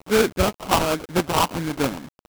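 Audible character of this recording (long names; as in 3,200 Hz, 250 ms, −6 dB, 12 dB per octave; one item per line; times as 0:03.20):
phaser sweep stages 12, 1.2 Hz, lowest notch 510–1,600 Hz
aliases and images of a low sample rate 1,900 Hz, jitter 20%
tremolo saw down 2.8 Hz, depth 35%
a quantiser's noise floor 8 bits, dither none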